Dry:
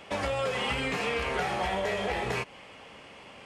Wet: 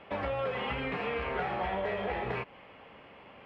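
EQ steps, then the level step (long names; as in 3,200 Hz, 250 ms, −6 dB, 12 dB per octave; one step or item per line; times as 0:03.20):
high-frequency loss of the air 450 metres
low-shelf EQ 430 Hz −3 dB
0.0 dB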